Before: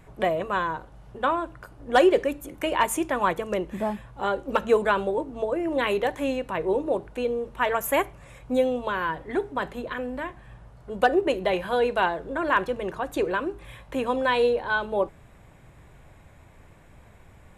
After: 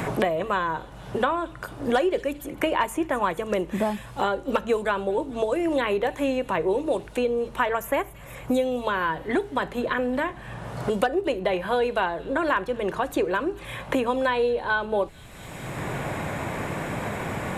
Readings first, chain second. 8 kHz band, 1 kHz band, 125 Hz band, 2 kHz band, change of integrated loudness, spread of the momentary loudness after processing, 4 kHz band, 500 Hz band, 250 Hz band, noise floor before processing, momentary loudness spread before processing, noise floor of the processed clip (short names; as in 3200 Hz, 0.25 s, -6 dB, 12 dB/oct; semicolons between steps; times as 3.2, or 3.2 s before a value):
-2.5 dB, 0.0 dB, +6.0 dB, +0.5 dB, -0.5 dB, 8 LU, 0.0 dB, 0.0 dB, +2.0 dB, -52 dBFS, 9 LU, -42 dBFS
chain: on a send: thin delay 0.222 s, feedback 45%, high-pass 3600 Hz, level -17 dB; on the sum: three-band squash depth 100%